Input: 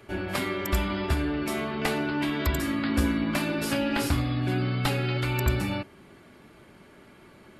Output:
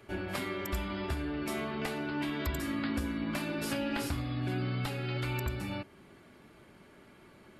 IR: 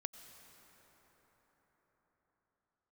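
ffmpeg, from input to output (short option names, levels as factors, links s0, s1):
-af "alimiter=limit=0.112:level=0:latency=1:release=485,volume=0.596"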